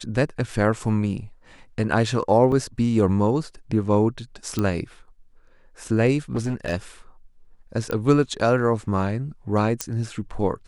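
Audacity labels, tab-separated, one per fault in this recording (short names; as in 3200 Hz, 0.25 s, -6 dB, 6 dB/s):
2.520000	2.520000	gap 2.4 ms
4.590000	4.590000	pop -11 dBFS
6.330000	6.730000	clipped -20 dBFS
7.910000	7.910000	pop -15 dBFS
9.810000	9.810000	pop -8 dBFS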